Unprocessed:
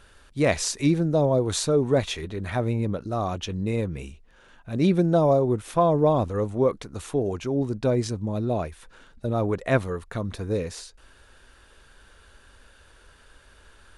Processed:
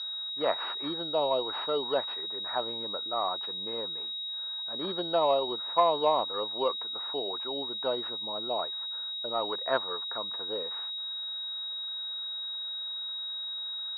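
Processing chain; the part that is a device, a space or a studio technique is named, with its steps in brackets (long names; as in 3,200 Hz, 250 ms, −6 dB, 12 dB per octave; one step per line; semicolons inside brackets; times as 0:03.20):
toy sound module (linearly interpolated sample-rate reduction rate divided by 4×; switching amplifier with a slow clock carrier 3,800 Hz; loudspeaker in its box 610–5,000 Hz, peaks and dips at 920 Hz +7 dB, 1,300 Hz +5 dB, 2,300 Hz −7 dB)
level −2.5 dB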